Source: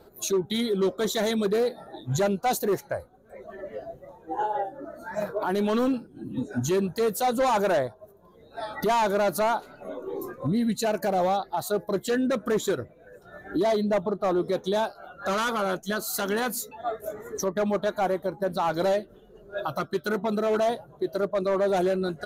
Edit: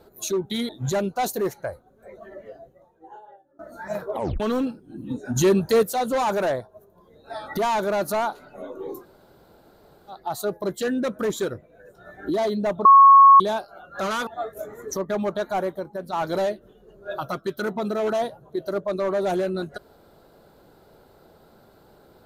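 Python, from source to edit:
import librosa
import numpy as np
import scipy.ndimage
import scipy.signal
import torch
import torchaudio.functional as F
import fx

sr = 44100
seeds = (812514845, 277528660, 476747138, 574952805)

y = fx.edit(x, sr, fx.cut(start_s=0.69, length_s=1.27),
    fx.fade_out_to(start_s=3.4, length_s=1.46, curve='qua', floor_db=-24.0),
    fx.tape_stop(start_s=5.39, length_s=0.28),
    fx.clip_gain(start_s=6.63, length_s=0.47, db=6.5),
    fx.room_tone_fill(start_s=10.26, length_s=1.16, crossfade_s=0.16),
    fx.bleep(start_s=14.12, length_s=0.55, hz=1100.0, db=-7.0),
    fx.cut(start_s=15.54, length_s=1.2),
    fx.fade_out_to(start_s=18.17, length_s=0.43, curve='qua', floor_db=-6.0), tone=tone)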